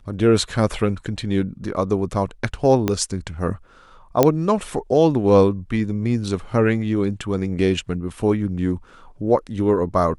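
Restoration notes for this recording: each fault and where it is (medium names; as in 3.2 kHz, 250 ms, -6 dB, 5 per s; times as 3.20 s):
2.88 s: pop -7 dBFS
4.23 s: pop -1 dBFS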